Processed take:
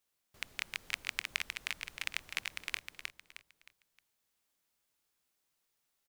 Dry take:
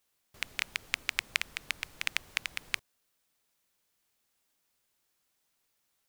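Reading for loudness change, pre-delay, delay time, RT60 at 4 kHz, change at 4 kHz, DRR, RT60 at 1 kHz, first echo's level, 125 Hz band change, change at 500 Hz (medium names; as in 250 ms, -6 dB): -4.5 dB, no reverb, 311 ms, no reverb, -4.0 dB, no reverb, no reverb, -4.5 dB, -4.0 dB, -4.0 dB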